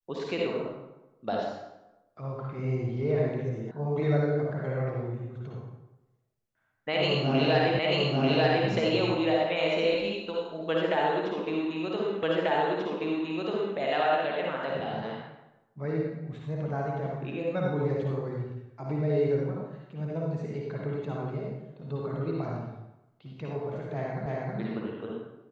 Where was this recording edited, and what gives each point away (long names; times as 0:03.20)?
0:03.71: cut off before it has died away
0:07.79: the same again, the last 0.89 s
0:12.23: the same again, the last 1.54 s
0:24.26: the same again, the last 0.32 s